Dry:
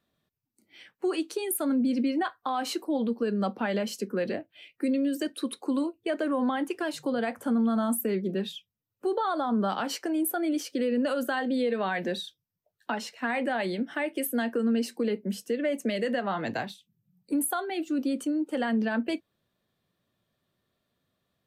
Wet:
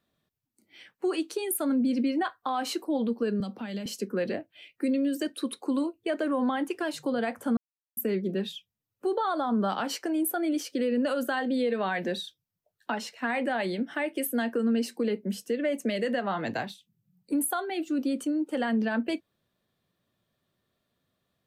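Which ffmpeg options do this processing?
-filter_complex "[0:a]asettb=1/sr,asplit=3[s0][s1][s2];[s0]atrim=end=3.404[s3];[s1]atrim=start=3.4:end=3.86,asetpts=PTS-STARTPTS,afade=t=in:d=0.004:c=qsin,afade=t=out:st=0.456:d=0.004:c=qsin,acrossover=split=230|3000[s4][s5][s6];[s5]acompressor=threshold=0.00891:ratio=6:attack=3.2:release=140:knee=2.83:detection=peak[s7];[s4][s7][s6]amix=inputs=3:normalize=0[s8];[s2]atrim=start=3.856[s9];[s3][s8]acrossfade=d=0.004:c1=hsin:c2=qsin[s10];[s10][s9]acrossfade=d=0.004:c1=qsin:c2=hsin,asplit=3[s11][s12][s13];[s11]atrim=end=7.57,asetpts=PTS-STARTPTS,afade=t=out:st=7.566:d=0.004:c=hsin[s14];[s12]atrim=start=7.57:end=7.97,asetpts=PTS-STARTPTS,volume=0[s15];[s13]atrim=start=7.97,asetpts=PTS-STARTPTS,afade=t=in:d=0.004:c=hsin[s16];[s14][s15][s16]concat=n=3:v=0:a=1"

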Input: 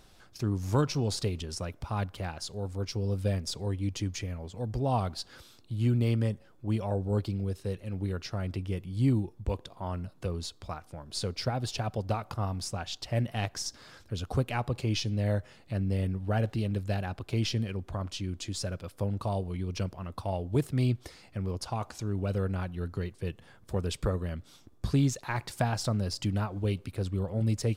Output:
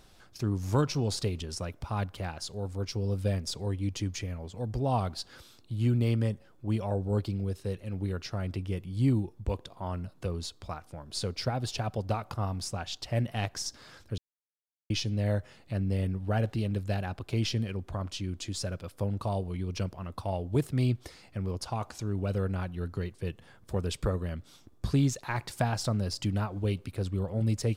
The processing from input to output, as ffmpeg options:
-filter_complex "[0:a]asplit=3[s0][s1][s2];[s0]atrim=end=14.18,asetpts=PTS-STARTPTS,afade=t=out:st=14.176:d=0.004:c=hsin[s3];[s1]atrim=start=14.18:end=14.9,asetpts=PTS-STARTPTS,volume=0[s4];[s2]atrim=start=14.9,asetpts=PTS-STARTPTS,afade=t=in:d=0.004:c=hsin[s5];[s3][s4][s5]concat=n=3:v=0:a=1"

